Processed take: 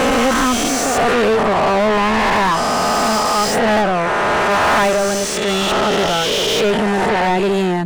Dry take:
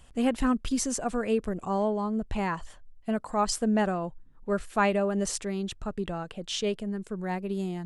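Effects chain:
peak hold with a rise ahead of every peak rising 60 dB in 2.77 s
0:03.20–0:05.48: noise gate −21 dBFS, range −6 dB
mid-hump overdrive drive 33 dB, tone 2,600 Hz, clips at −9.5 dBFS
level +2 dB

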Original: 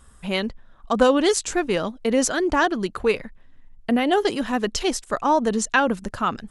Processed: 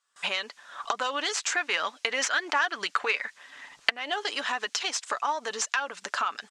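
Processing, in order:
stylus tracing distortion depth 0.063 ms
camcorder AGC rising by 50 dB per second
background noise blue −55 dBFS
noise gate with hold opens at −33 dBFS
high-pass filter 1,100 Hz 12 dB per octave
downward compressor 5 to 1, threshold −26 dBFS, peak gain reduction 14.5 dB
0:01.35–0:03.93: dynamic equaliser 1,900 Hz, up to +5 dB, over −41 dBFS, Q 1
low-pass filter 7,400 Hz 24 dB per octave
comb filter 6.9 ms, depth 30%
level +1 dB

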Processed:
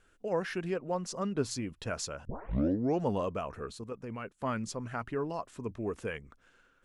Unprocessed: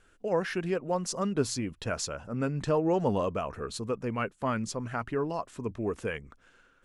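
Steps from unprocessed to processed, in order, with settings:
0:00.73–0:01.51: high-shelf EQ 8,200 Hz −8.5 dB
0:02.25: tape start 0.77 s
0:03.71–0:04.39: output level in coarse steps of 9 dB
level −3.5 dB

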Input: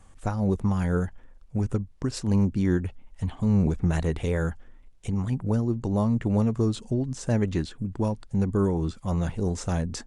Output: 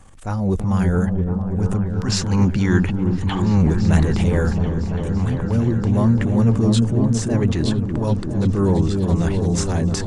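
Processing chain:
gain on a spectral selection 0:01.89–0:03.62, 760–7,500 Hz +8 dB
transient designer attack −9 dB, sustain +6 dB
echo whose low-pass opens from repeat to repeat 336 ms, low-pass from 400 Hz, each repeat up 1 octave, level −3 dB
level +6 dB

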